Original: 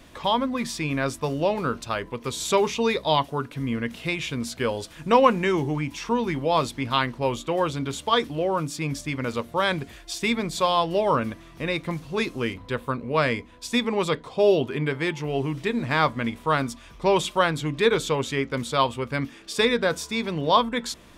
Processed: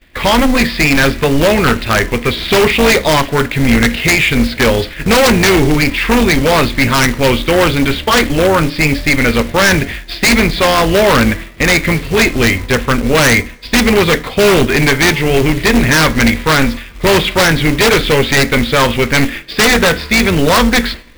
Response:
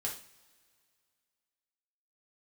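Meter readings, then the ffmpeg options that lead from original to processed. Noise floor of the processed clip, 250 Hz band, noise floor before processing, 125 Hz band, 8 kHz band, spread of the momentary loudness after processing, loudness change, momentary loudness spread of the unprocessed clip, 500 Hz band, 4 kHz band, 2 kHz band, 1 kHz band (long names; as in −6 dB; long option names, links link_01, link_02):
−29 dBFS, +14.5 dB, −48 dBFS, +14.5 dB, +17.5 dB, 4 LU, +13.5 dB, 8 LU, +11.0 dB, +14.5 dB, +18.0 dB, +9.0 dB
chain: -filter_complex "[0:a]tremolo=f=280:d=0.621,acrossover=split=2600[link_01][link_02];[link_02]acompressor=threshold=-41dB:ratio=4:attack=1:release=60[link_03];[link_01][link_03]amix=inputs=2:normalize=0,agate=range=-33dB:threshold=-40dB:ratio=3:detection=peak,lowshelf=frequency=130:gain=12,aresample=11025,asoftclip=type=hard:threshold=-17dB,aresample=44100,equalizer=frequency=125:width_type=o:width=1:gain=-7,equalizer=frequency=1000:width_type=o:width=1:gain=-6,equalizer=frequency=2000:width_type=o:width=1:gain=12,acrusher=bits=3:mode=log:mix=0:aa=0.000001,aeval=exprs='0.473*sin(PI/2*5.62*val(0)/0.473)':channel_layout=same,asplit=2[link_04][link_05];[1:a]atrim=start_sample=2205[link_06];[link_05][link_06]afir=irnorm=-1:irlink=0,volume=-13.5dB[link_07];[link_04][link_07]amix=inputs=2:normalize=0"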